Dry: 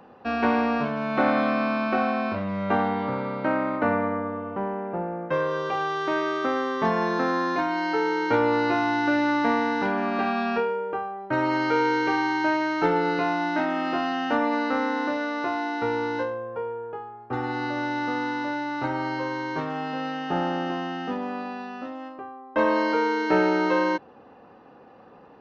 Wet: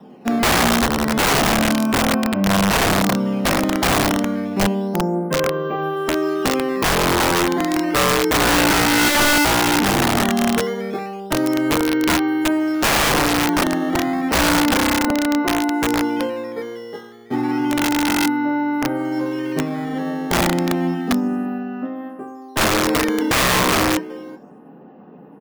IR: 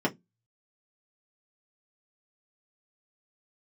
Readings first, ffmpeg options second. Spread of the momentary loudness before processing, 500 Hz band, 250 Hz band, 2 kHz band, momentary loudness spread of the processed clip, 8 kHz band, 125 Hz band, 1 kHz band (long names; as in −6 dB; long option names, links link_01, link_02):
8 LU, +4.0 dB, +8.0 dB, +7.0 dB, 10 LU, can't be measured, +11.0 dB, +4.0 dB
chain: -filter_complex "[0:a]lowshelf=frequency=130:gain=8.5,flanger=delay=5.2:depth=9.4:regen=87:speed=0.16:shape=triangular,aecho=1:1:383:0.141,acrossover=split=440[link_01][link_02];[link_02]volume=21.5dB,asoftclip=hard,volume=-21.5dB[link_03];[link_01][link_03]amix=inputs=2:normalize=0,acrusher=samples=10:mix=1:aa=0.000001:lfo=1:lforange=16:lforate=0.31[link_04];[1:a]atrim=start_sample=2205,atrim=end_sample=3528[link_05];[link_04][link_05]afir=irnorm=-1:irlink=0,aeval=exprs='(mod(2.24*val(0)+1,2)-1)/2.24':channel_layout=same,volume=-4.5dB"